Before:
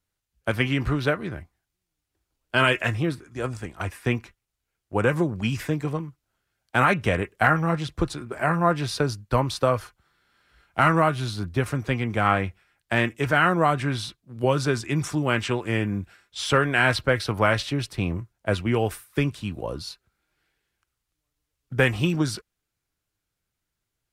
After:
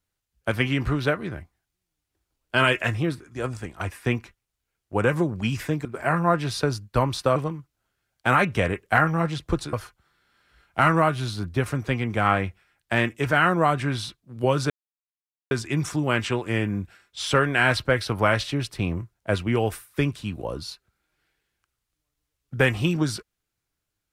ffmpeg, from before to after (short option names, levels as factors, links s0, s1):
-filter_complex "[0:a]asplit=5[s0][s1][s2][s3][s4];[s0]atrim=end=5.852[s5];[s1]atrim=start=8.218:end=9.732[s6];[s2]atrim=start=5.848:end=8.222[s7];[s3]atrim=start=9.728:end=14.7,asetpts=PTS-STARTPTS,afade=t=out:st=4.968:d=0.004:c=hsin,apad=pad_dur=0.81[s8];[s4]atrim=start=14.7,asetpts=PTS-STARTPTS,afade=t=in:d=0.004:c=hsin[s9];[s5][s6]acrossfade=d=0.004:c1=hsin:c2=hsin[s10];[s10][s7]acrossfade=d=0.004:c1=hsin:c2=hsin[s11];[s8][s9]concat=n=2:v=0:a=1[s12];[s11][s12]acrossfade=d=0.004:c1=hsin:c2=hsin"